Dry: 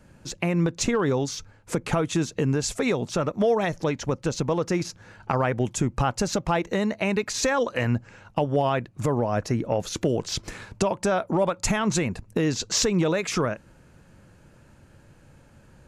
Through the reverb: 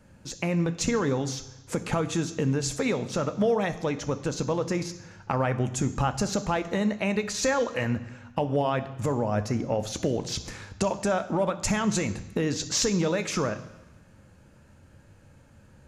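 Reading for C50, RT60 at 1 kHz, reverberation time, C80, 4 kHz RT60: 14.0 dB, 1.1 s, 1.0 s, 16.0 dB, 1.1 s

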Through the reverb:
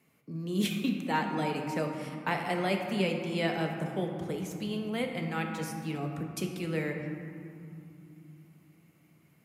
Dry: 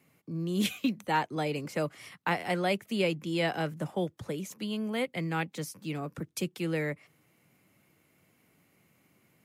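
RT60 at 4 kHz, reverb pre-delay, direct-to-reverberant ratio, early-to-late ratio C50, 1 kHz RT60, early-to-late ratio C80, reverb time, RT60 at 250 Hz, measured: 1.3 s, 3 ms, 2.5 dB, 4.5 dB, 2.9 s, 5.5 dB, 2.8 s, 4.1 s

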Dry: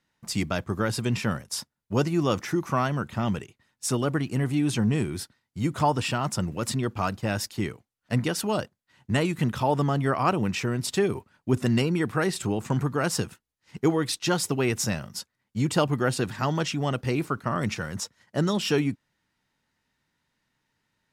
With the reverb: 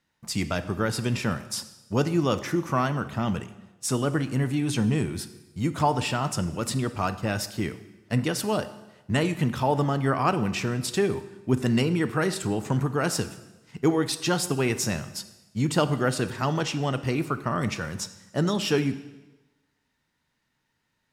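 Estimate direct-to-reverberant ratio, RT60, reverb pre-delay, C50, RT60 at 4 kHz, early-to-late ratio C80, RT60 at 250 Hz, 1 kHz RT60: 11.0 dB, 1.1 s, 5 ms, 13.5 dB, 1.0 s, 15.5 dB, 1.0 s, 1.1 s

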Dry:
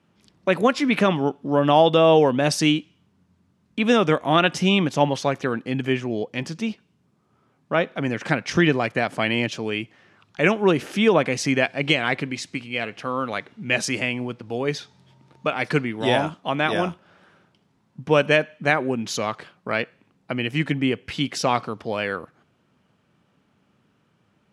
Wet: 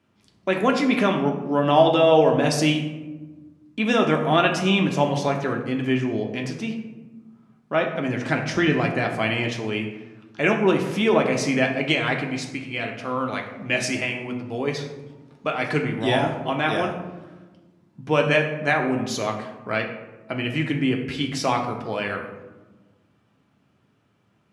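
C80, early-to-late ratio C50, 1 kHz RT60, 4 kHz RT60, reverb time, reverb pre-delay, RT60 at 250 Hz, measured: 9.0 dB, 7.0 dB, 1.1 s, 0.60 s, 1.2 s, 3 ms, 1.9 s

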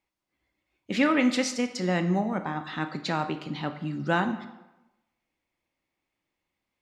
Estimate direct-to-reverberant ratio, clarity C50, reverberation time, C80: 8.5 dB, 11.0 dB, 1.0 s, 13.5 dB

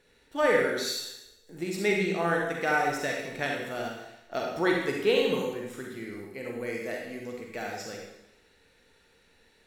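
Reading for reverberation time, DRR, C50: 0.90 s, −1.0 dB, 1.0 dB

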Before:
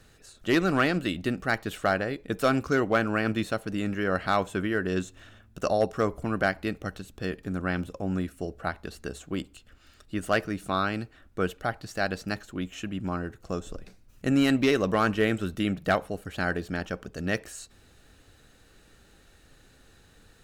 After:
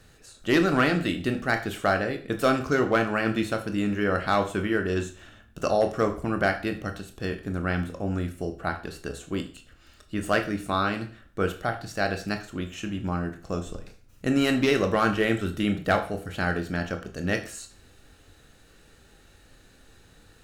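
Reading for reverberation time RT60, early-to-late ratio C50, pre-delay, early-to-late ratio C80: 0.45 s, 12.0 dB, 20 ms, 16.5 dB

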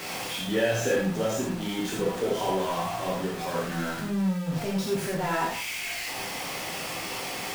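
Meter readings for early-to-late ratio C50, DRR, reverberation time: 3.0 dB, −4.0 dB, non-exponential decay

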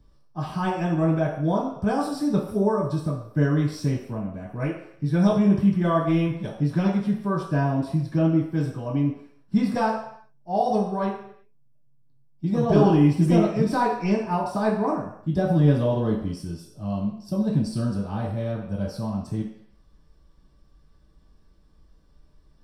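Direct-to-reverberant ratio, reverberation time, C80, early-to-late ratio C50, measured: −9.0 dB, non-exponential decay, 7.0 dB, 4.0 dB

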